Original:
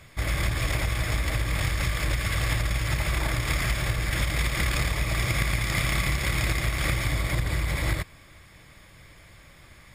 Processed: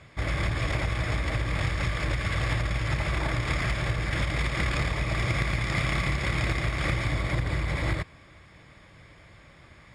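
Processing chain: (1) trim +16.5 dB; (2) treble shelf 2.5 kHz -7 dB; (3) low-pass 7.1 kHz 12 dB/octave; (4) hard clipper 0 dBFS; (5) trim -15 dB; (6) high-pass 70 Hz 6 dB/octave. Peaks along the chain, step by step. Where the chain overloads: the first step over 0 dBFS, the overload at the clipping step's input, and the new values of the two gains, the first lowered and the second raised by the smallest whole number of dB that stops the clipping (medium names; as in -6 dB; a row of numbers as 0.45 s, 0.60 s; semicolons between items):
+6.5 dBFS, +4.5 dBFS, +4.5 dBFS, 0.0 dBFS, -15.0 dBFS, -13.5 dBFS; step 1, 4.5 dB; step 1 +11.5 dB, step 5 -10 dB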